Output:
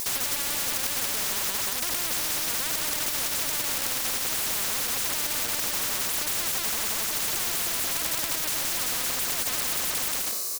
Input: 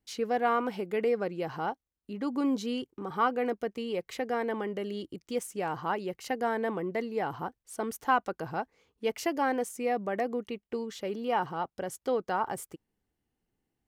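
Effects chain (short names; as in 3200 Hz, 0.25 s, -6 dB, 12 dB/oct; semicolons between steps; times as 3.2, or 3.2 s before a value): speed glide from 119% -> 143%; resonant high shelf 4400 Hz +13.5 dB, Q 3; feedback echo 0.178 s, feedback 20%, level -7 dB; harmonic-percussive split percussive -18 dB; tilt +3.5 dB/oct; transient shaper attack -6 dB, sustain +12 dB; overdrive pedal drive 38 dB, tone 7100 Hz, clips at -13 dBFS; spectral compressor 10:1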